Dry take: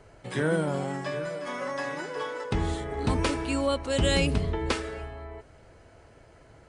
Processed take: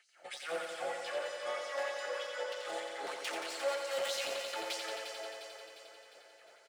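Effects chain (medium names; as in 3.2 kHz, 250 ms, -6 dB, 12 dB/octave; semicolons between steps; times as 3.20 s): hard clipper -29 dBFS, distortion -6 dB; hum notches 50/100/150 Hz; LFO high-pass sine 3.2 Hz 590–5300 Hz; band-stop 990 Hz, Q 5.6; comb 5.7 ms, depth 36%; feedback delay 354 ms, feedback 56%, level -9.5 dB; bit-crushed delay 88 ms, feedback 80%, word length 13-bit, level -6.5 dB; trim -6.5 dB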